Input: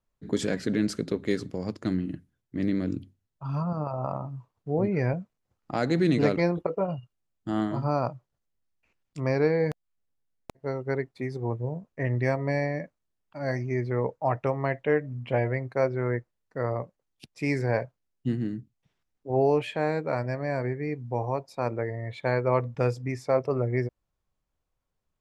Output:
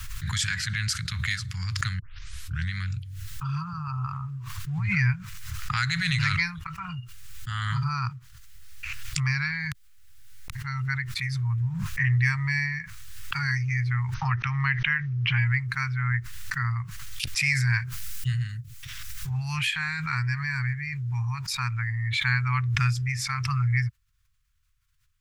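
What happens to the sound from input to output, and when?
1.99 s: tape start 0.73 s
14.14–15.41 s: brick-wall FIR low-pass 6.4 kHz
17.55–19.77 s: treble shelf 6.3 kHz +7.5 dB
whole clip: inverse Chebyshev band-stop 260–620 Hz, stop band 60 dB; swell ahead of each attack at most 25 dB/s; trim +9 dB

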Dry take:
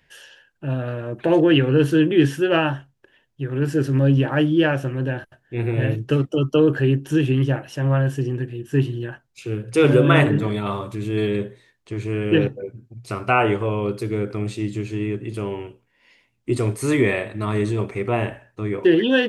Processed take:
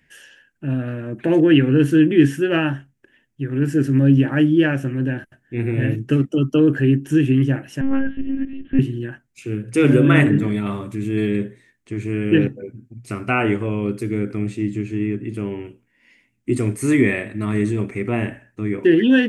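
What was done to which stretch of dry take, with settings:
7.81–8.79 s: monotone LPC vocoder at 8 kHz 270 Hz
14.45–15.65 s: treble shelf 4.8 kHz -7 dB
whole clip: ten-band graphic EQ 250 Hz +9 dB, 500 Hz -4 dB, 1 kHz -6 dB, 2 kHz +6 dB, 4 kHz -7 dB, 8 kHz +4 dB; trim -1 dB

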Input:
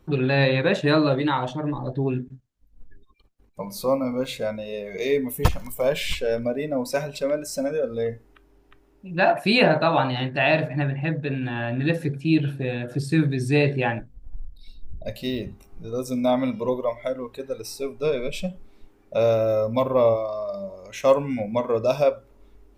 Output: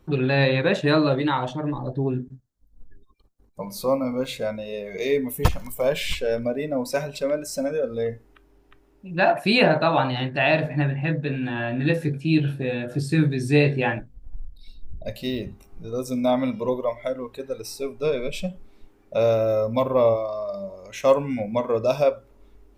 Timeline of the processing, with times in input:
1.82–3.62 s: peaking EQ 2.5 kHz -10.5 dB 0.99 oct
10.63–13.97 s: doubling 20 ms -7 dB

